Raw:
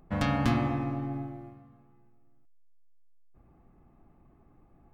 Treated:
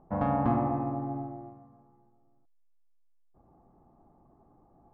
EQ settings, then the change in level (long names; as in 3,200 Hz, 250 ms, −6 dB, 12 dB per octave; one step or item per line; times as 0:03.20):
low-pass with resonance 860 Hz, resonance Q 1.9
low-shelf EQ 100 Hz −8 dB
0.0 dB